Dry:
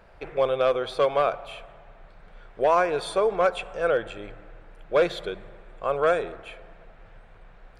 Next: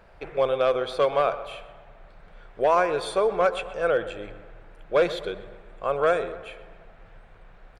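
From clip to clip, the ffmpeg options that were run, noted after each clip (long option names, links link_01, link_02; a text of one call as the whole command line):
ffmpeg -i in.wav -filter_complex "[0:a]asplit=2[link_01][link_02];[link_02]adelay=126,lowpass=frequency=3200:poles=1,volume=-15dB,asplit=2[link_03][link_04];[link_04]adelay=126,lowpass=frequency=3200:poles=1,volume=0.48,asplit=2[link_05][link_06];[link_06]adelay=126,lowpass=frequency=3200:poles=1,volume=0.48,asplit=2[link_07][link_08];[link_08]adelay=126,lowpass=frequency=3200:poles=1,volume=0.48[link_09];[link_01][link_03][link_05][link_07][link_09]amix=inputs=5:normalize=0" out.wav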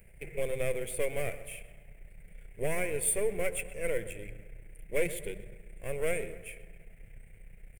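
ffmpeg -i in.wav -af "aeval=exprs='if(lt(val(0),0),0.447*val(0),val(0))':channel_layout=same,firequalizer=gain_entry='entry(150,0);entry(290,-9);entry(440,-7);entry(800,-21);entry(1200,-28);entry(2100,2);entry(3900,-20);entry(5900,-10);entry(8800,15)':delay=0.05:min_phase=1,volume=2.5dB" out.wav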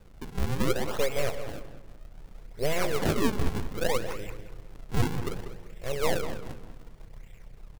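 ffmpeg -i in.wav -filter_complex "[0:a]acrusher=samples=41:mix=1:aa=0.000001:lfo=1:lforange=65.6:lforate=0.65,asplit=2[link_01][link_02];[link_02]adelay=192,lowpass=frequency=2500:poles=1,volume=-10dB,asplit=2[link_03][link_04];[link_04]adelay=192,lowpass=frequency=2500:poles=1,volume=0.32,asplit=2[link_05][link_06];[link_06]adelay=192,lowpass=frequency=2500:poles=1,volume=0.32,asplit=2[link_07][link_08];[link_08]adelay=192,lowpass=frequency=2500:poles=1,volume=0.32[link_09];[link_01][link_03][link_05][link_07][link_09]amix=inputs=5:normalize=0,volume=4dB" out.wav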